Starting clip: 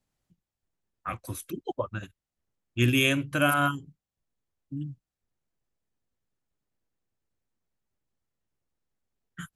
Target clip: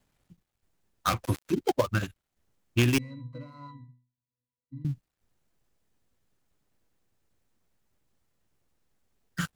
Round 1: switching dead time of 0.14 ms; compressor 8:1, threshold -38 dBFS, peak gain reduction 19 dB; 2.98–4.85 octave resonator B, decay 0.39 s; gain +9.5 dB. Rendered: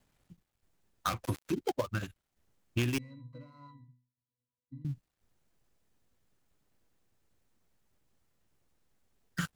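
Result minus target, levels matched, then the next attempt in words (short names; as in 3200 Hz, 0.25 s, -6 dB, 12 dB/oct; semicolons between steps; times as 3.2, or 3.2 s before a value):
compressor: peak gain reduction +8 dB
switching dead time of 0.14 ms; compressor 8:1, threshold -29 dBFS, peak gain reduction 11 dB; 2.98–4.85 octave resonator B, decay 0.39 s; gain +9.5 dB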